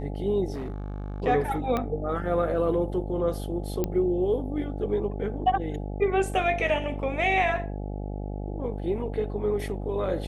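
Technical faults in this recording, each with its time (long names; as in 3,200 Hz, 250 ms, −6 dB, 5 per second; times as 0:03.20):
mains buzz 50 Hz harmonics 17 −33 dBFS
0:00.54–0:01.22: clipping −29.5 dBFS
0:01.77: click −15 dBFS
0:03.84: click −14 dBFS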